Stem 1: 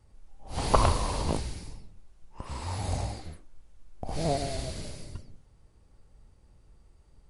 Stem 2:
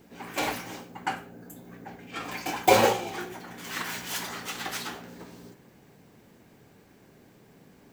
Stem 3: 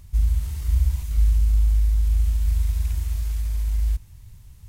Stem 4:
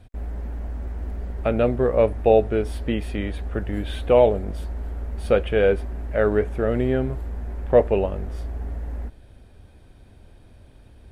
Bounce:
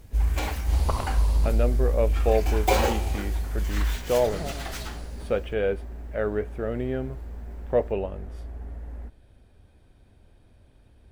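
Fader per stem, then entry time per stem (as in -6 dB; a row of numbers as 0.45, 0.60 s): -7.0, -3.5, -4.0, -7.0 dB; 0.15, 0.00, 0.00, 0.00 s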